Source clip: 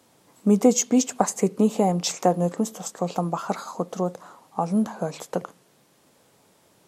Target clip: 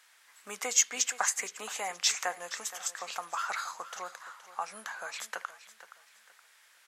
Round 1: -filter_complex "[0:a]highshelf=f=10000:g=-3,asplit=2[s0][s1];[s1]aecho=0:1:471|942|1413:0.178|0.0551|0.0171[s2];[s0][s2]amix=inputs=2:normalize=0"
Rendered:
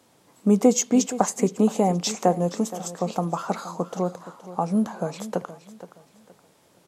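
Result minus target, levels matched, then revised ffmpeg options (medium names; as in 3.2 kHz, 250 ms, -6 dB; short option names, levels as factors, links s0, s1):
2 kHz band -14.0 dB
-filter_complex "[0:a]highpass=f=1700:t=q:w=2.5,highshelf=f=10000:g=-3,asplit=2[s0][s1];[s1]aecho=0:1:471|942|1413:0.178|0.0551|0.0171[s2];[s0][s2]amix=inputs=2:normalize=0"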